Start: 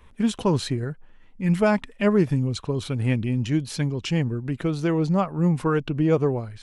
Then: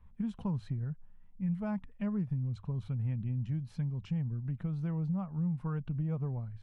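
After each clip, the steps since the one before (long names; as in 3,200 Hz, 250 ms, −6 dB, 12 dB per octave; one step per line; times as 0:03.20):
drawn EQ curve 190 Hz 0 dB, 330 Hz −19 dB, 870 Hz −10 dB, 7,100 Hz −26 dB
downward compressor 4 to 1, threshold −27 dBFS, peak gain reduction 9 dB
mains-hum notches 50/100 Hz
level −4 dB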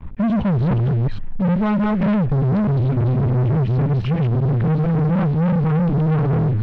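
delay that plays each chunk backwards 297 ms, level −1.5 dB
leveller curve on the samples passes 5
high-frequency loss of the air 270 metres
level +7 dB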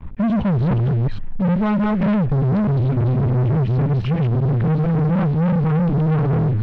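no processing that can be heard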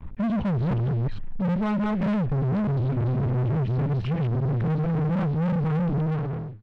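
fade-out on the ending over 0.63 s
in parallel at −5 dB: soft clipping −26 dBFS, distortion −13 dB
on the sum: level −8 dB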